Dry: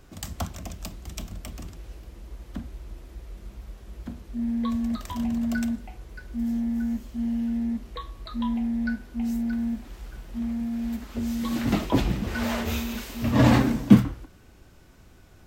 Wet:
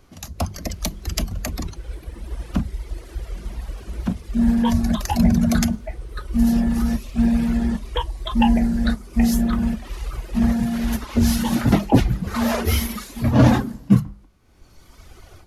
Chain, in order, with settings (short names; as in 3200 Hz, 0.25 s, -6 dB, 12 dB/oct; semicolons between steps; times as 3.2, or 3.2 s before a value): reverb removal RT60 1.9 s; notches 50/100/150/200 Hz; dynamic EQ 3000 Hz, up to -5 dB, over -52 dBFS, Q 0.96; AGC gain up to 15 dB; formant shift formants -3 st